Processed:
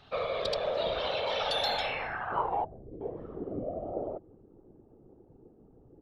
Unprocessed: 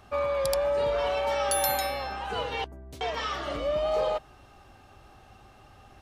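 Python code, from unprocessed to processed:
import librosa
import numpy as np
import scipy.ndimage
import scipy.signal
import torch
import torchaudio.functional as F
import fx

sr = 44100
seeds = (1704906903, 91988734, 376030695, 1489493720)

y = fx.filter_sweep_lowpass(x, sr, from_hz=3800.0, to_hz=360.0, start_s=1.75, end_s=2.96, q=5.0)
y = fx.whisperise(y, sr, seeds[0])
y = y * librosa.db_to_amplitude(-5.5)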